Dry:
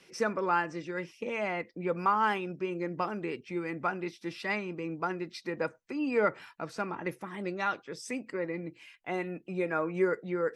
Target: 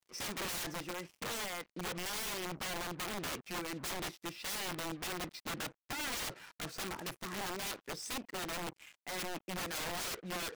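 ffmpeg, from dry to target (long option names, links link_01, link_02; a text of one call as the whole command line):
ffmpeg -i in.wav -filter_complex "[0:a]asplit=3[link_01][link_02][link_03];[link_01]afade=type=out:start_time=0.92:duration=0.02[link_04];[link_02]acompressor=threshold=-32dB:ratio=12,afade=type=in:start_time=0.92:duration=0.02,afade=type=out:start_time=2.13:duration=0.02[link_05];[link_03]afade=type=in:start_time=2.13:duration=0.02[link_06];[link_04][link_05][link_06]amix=inputs=3:normalize=0,asettb=1/sr,asplit=3[link_07][link_08][link_09];[link_07]atrim=end=5.324[link_10];[link_08]atrim=start=5.32:end=6.36,asetpts=PTS-STARTPTS,afade=type=in:duration=0.004:curve=qsin,afade=type=out:start_time=1.036:duration=0.004:curve=qsin,tiltshelf=frequency=640:gain=5.5[link_11];[link_09]atrim=start=6.356[link_12];[link_10][link_11]acrossfade=duration=0.004:curve1=hsin:curve2=qsin[link_13];[link_13][link_12]acrossfade=duration=0.004:curve1=qsin:curve2=hsin,acrusher=bits=7:mix=0:aa=0.5,tremolo=f=1.5:d=0.43,aeval=exprs='(mod(50.1*val(0)+1,2)-1)/50.1':channel_layout=same" out.wav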